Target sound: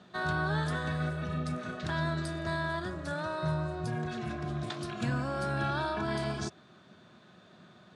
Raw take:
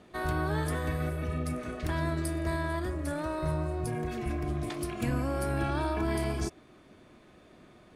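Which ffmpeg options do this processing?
-af "highpass=f=100:w=0.5412,highpass=f=100:w=1.3066,equalizer=f=180:t=q:w=4:g=6,equalizer=f=300:t=q:w=4:g=-9,equalizer=f=470:t=q:w=4:g=-5,equalizer=f=1.5k:t=q:w=4:g=6,equalizer=f=2.2k:t=q:w=4:g=-6,equalizer=f=3.8k:t=q:w=4:g=7,lowpass=f=7.6k:w=0.5412,lowpass=f=7.6k:w=1.3066"

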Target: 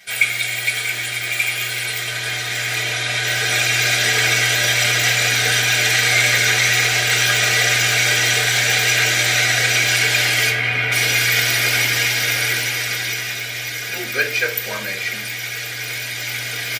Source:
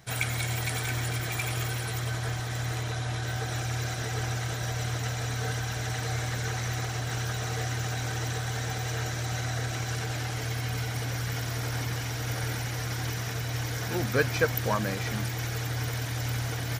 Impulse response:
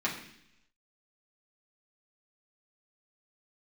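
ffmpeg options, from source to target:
-filter_complex "[0:a]aemphasis=mode=production:type=75fm,asettb=1/sr,asplit=3[a][b][c];[a]atrim=end=10.504[d];[b]atrim=start=10.5:end=10.92,asetpts=PTS-STARTPTS,afade=t=in:d=0.004:c=qsin,afade=t=out:st=0.416:d=0.004:c=qsin,acrossover=split=2900[e][f];[f]acompressor=threshold=-54dB:ratio=4:attack=1:release=60[g];[e][g]amix=inputs=2:normalize=0[h];[c]atrim=start=10.916[i];[d][h]acrossfade=d=0.004:c1=hsin:c2=qsin[j];[j][i]acrossfade=d=0.004:c1=qsin:c2=hsin,equalizer=f=2.3k:w=1:g=14.5,dynaudnorm=f=110:g=31:m=8dB[k];[1:a]atrim=start_sample=2205,asetrate=88200,aresample=44100[l];[k][l]afir=irnorm=-1:irlink=0,aresample=32000,aresample=44100"

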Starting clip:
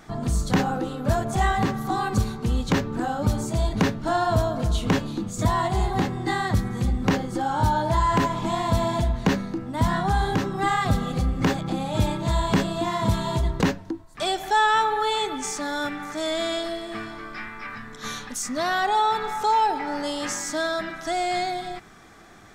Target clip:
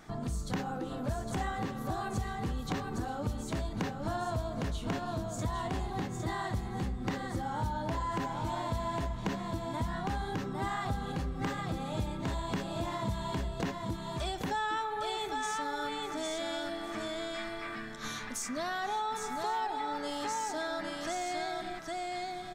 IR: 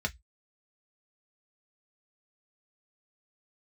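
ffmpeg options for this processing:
-filter_complex "[0:a]asplit=2[a][b];[b]aecho=0:1:808:0.596[c];[a][c]amix=inputs=2:normalize=0,acompressor=threshold=-29dB:ratio=2.5,asplit=2[d][e];[e]aecho=0:1:1103:0.0794[f];[d][f]amix=inputs=2:normalize=0,volume=-5.5dB"

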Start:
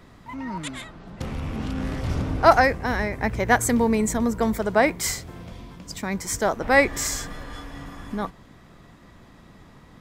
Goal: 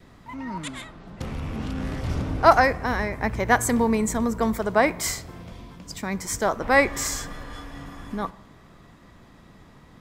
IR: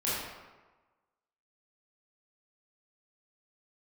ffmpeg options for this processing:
-filter_complex "[0:a]adynamicequalizer=threshold=0.0126:dfrequency=1100:dqfactor=3.8:tfrequency=1100:tqfactor=3.8:attack=5:release=100:ratio=0.375:range=2.5:mode=boostabove:tftype=bell,asplit=2[a][b];[1:a]atrim=start_sample=2205[c];[b][c]afir=irnorm=-1:irlink=0,volume=-27dB[d];[a][d]amix=inputs=2:normalize=0,volume=-1.5dB"

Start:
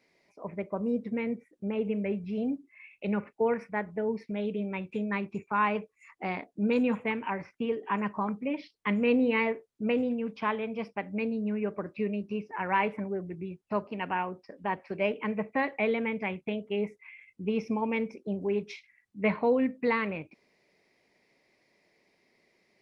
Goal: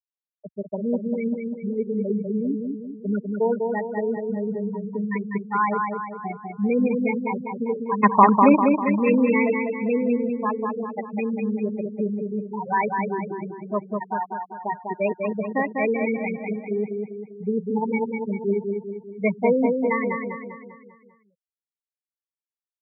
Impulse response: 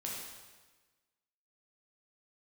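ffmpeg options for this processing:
-filter_complex "[0:a]asettb=1/sr,asplit=3[a][b][c];[a]atrim=end=8.034[d];[b]atrim=start=8.03:end=8.72,asetpts=PTS-STARTPTS,afade=t=in:d=0.004:c=qsin,afade=t=out:st=0.686:d=0.004:c=qsin,equalizer=f=250:t=o:w=1:g=10,equalizer=f=500:t=o:w=1:g=7,equalizer=f=1k:t=o:w=1:g=12,equalizer=f=2k:t=o:w=1:g=7,equalizer=f=4k:t=o:w=1:g=9[e];[c]atrim=start=8.716[f];[d][e]acrossfade=d=0.004:c1=hsin:c2=qsin[g];[g][f]acrossfade=d=0.004:c1=qsin:c2=hsin,afftfilt=real='re*gte(hypot(re,im),0.126)':imag='im*gte(hypot(re,im),0.126)':win_size=1024:overlap=0.75,highpass=61,asplit=2[h][i];[i]adelay=198,lowpass=f=4.3k:p=1,volume=-4dB,asplit=2[j][k];[k]adelay=198,lowpass=f=4.3k:p=1,volume=0.5,asplit=2[l][m];[m]adelay=198,lowpass=f=4.3k:p=1,volume=0.5,asplit=2[n][o];[o]adelay=198,lowpass=f=4.3k:p=1,volume=0.5,asplit=2[p][q];[q]adelay=198,lowpass=f=4.3k:p=1,volume=0.5,asplit=2[r][s];[s]adelay=198,lowpass=f=4.3k:p=1,volume=0.5[t];[h][j][l][n][p][r][t]amix=inputs=7:normalize=0,volume=5dB"

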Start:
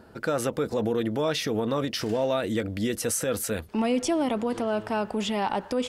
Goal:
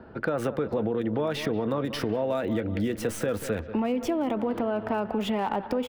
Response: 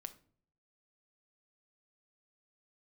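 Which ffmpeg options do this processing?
-filter_complex "[0:a]highshelf=f=3.2k:g=-9.5,asplit=2[a][b];[b]adelay=186,lowpass=f=4.8k:p=1,volume=-15dB,asplit=2[c][d];[d]adelay=186,lowpass=f=4.8k:p=1,volume=0.41,asplit=2[e][f];[f]adelay=186,lowpass=f=4.8k:p=1,volume=0.41,asplit=2[g][h];[h]adelay=186,lowpass=f=4.8k:p=1,volume=0.41[i];[a][c][e][g][i]amix=inputs=5:normalize=0,acrossover=split=140|510|4100[j][k][l][m];[m]acrusher=bits=5:dc=4:mix=0:aa=0.000001[n];[j][k][l][n]amix=inputs=4:normalize=0,acompressor=threshold=-28dB:ratio=6,volume=4.5dB"

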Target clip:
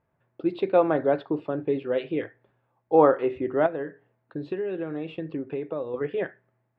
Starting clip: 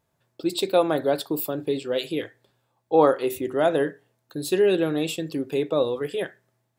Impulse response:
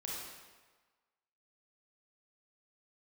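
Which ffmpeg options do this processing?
-filter_complex "[0:a]lowpass=f=2.3k:w=0.5412,lowpass=f=2.3k:w=1.3066,asettb=1/sr,asplit=3[a][b][c];[a]atrim=end=3.664[d];[b]atrim=start=3.66:end=5.94,asetpts=PTS-STARTPTS,afade=t=in:d=0.004:c=qsin,afade=t=out:st=2.276:d=0.004:c=qsin,acompressor=threshold=-28dB:ratio=6[e];[c]atrim=start=5.936[f];[d][e]acrossfade=d=0.004:c1=hsin:c2=qsin[g];[g][f]acrossfade=d=0.004:c1=qsin:c2=hsin"

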